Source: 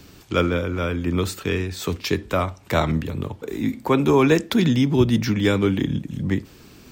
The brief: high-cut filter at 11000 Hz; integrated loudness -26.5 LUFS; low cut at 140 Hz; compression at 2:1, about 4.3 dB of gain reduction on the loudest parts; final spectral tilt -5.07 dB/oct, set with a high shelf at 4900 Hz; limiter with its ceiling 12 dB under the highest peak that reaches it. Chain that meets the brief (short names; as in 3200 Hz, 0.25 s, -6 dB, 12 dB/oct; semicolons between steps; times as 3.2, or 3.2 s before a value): HPF 140 Hz; LPF 11000 Hz; high shelf 4900 Hz +7 dB; compressor 2:1, threshold -20 dBFS; gain +2.5 dB; limiter -17 dBFS